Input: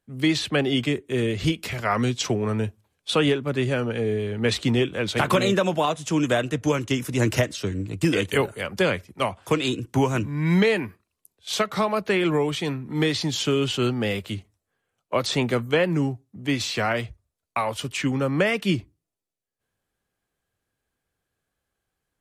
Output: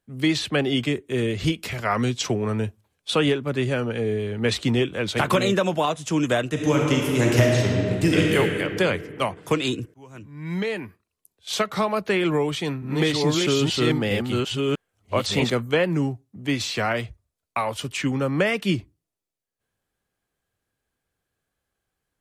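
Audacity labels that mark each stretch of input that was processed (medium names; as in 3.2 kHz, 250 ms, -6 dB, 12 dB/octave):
6.510000	8.370000	reverb throw, RT60 2.4 s, DRR -1.5 dB
9.940000	11.550000	fade in
12.180000	15.500000	chunks repeated in reverse 644 ms, level -1.5 dB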